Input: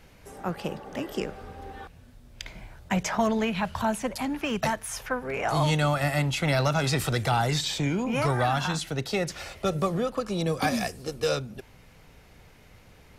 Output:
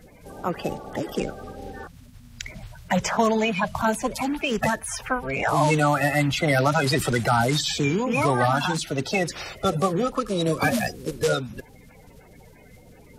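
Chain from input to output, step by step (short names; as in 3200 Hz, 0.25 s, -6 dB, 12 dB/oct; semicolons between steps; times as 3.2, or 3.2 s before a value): bin magnitudes rounded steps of 30 dB; gain +4.5 dB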